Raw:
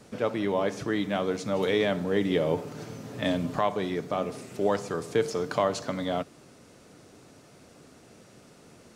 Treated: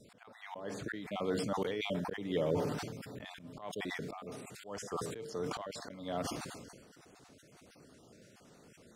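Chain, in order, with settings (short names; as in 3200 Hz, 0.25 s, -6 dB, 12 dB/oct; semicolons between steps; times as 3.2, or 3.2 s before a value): random spectral dropouts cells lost 31%; auto swell 0.328 s; sustainer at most 37 dB/s; gain -6 dB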